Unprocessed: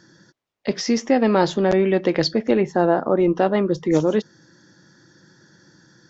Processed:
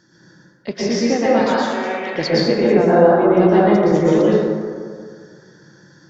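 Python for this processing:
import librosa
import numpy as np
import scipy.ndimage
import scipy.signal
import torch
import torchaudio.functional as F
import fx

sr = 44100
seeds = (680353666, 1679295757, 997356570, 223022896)

y = fx.highpass(x, sr, hz=970.0, slope=12, at=(1.26, 2.15))
y = fx.rev_plate(y, sr, seeds[0], rt60_s=1.9, hf_ratio=0.4, predelay_ms=105, drr_db=-8.0)
y = y * librosa.db_to_amplitude(-3.5)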